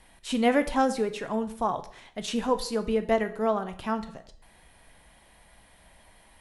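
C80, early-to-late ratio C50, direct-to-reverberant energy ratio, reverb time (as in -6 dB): 17.5 dB, 14.0 dB, 9.0 dB, 0.55 s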